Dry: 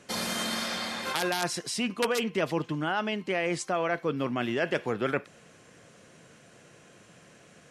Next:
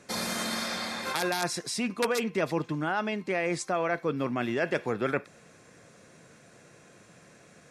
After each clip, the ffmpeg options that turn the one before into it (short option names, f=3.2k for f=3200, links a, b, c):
-af "bandreject=f=3k:w=6"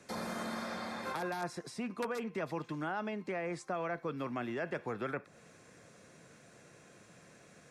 -filter_complex "[0:a]acrossover=split=220|790|1600[a][b][c][d];[a]acompressor=threshold=-42dB:ratio=4[e];[b]acompressor=threshold=-36dB:ratio=4[f];[c]acompressor=threshold=-36dB:ratio=4[g];[d]acompressor=threshold=-48dB:ratio=4[h];[e][f][g][h]amix=inputs=4:normalize=0,volume=-3.5dB"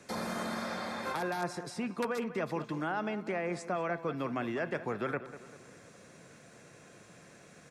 -filter_complex "[0:a]asplit=2[a][b];[b]adelay=196,lowpass=f=2.5k:p=1,volume=-13dB,asplit=2[c][d];[d]adelay=196,lowpass=f=2.5k:p=1,volume=0.5,asplit=2[e][f];[f]adelay=196,lowpass=f=2.5k:p=1,volume=0.5,asplit=2[g][h];[h]adelay=196,lowpass=f=2.5k:p=1,volume=0.5,asplit=2[i][j];[j]adelay=196,lowpass=f=2.5k:p=1,volume=0.5[k];[a][c][e][g][i][k]amix=inputs=6:normalize=0,volume=3dB"